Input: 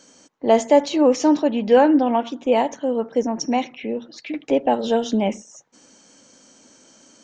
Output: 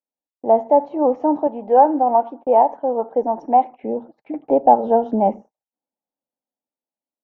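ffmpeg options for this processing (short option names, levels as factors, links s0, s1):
-filter_complex "[0:a]asettb=1/sr,asplit=3[s0][s1][s2];[s0]atrim=end=1.474[s3];[s1]atrim=start=1.47:end=3.84,asetpts=PTS-STARTPTS,afade=t=in:d=0.004:c=qsin,afade=t=out:st=2.366:d=0.004:c=qsin,equalizer=f=110:w=0.59:g=-13.5[s4];[s2]atrim=start=3.836[s5];[s3][s4]acrossfade=d=0.004:c1=hsin:c2=qsin[s6];[s6][s5]acrossfade=d=0.004:c1=qsin:c2=hsin,agate=range=0.00891:threshold=0.0126:ratio=16:detection=peak,dynaudnorm=f=210:g=11:m=3.76,lowpass=f=810:t=q:w=4,volume=0.473"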